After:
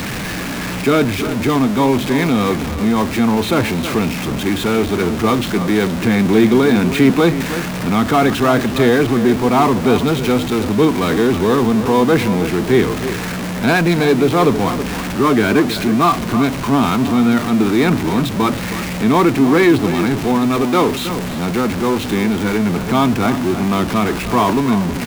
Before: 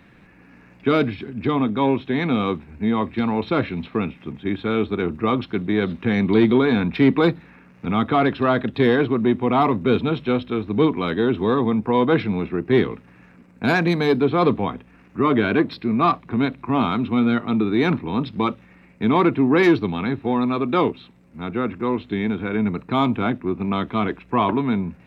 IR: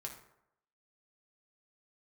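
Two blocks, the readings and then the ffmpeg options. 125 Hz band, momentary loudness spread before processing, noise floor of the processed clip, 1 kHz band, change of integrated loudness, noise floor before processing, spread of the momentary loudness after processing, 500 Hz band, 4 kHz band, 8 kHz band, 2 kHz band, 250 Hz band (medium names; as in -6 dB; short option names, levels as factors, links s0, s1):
+6.5 dB, 8 LU, -23 dBFS, +5.5 dB, +5.5 dB, -51 dBFS, 6 LU, +5.0 dB, +9.0 dB, no reading, +6.5 dB, +5.5 dB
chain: -filter_complex "[0:a]aeval=exprs='val(0)+0.5*0.0944*sgn(val(0))':c=same,asplit=2[s0][s1];[s1]adelay=320.7,volume=0.282,highshelf=f=4000:g=-7.22[s2];[s0][s2]amix=inputs=2:normalize=0,volume=1.33"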